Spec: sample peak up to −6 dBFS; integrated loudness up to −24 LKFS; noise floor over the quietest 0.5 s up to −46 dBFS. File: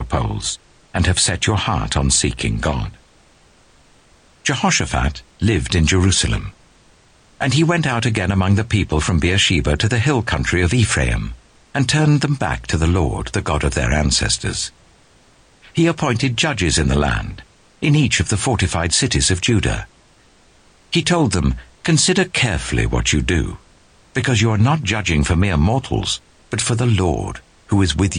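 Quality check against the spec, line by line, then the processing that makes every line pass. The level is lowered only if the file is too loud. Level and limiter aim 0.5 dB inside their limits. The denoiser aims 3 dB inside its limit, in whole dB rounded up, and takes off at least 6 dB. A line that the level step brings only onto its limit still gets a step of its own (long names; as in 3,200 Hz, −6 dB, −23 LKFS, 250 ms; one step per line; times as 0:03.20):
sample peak −5.5 dBFS: out of spec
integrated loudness −17.5 LKFS: out of spec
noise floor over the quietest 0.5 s −51 dBFS: in spec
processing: level −7 dB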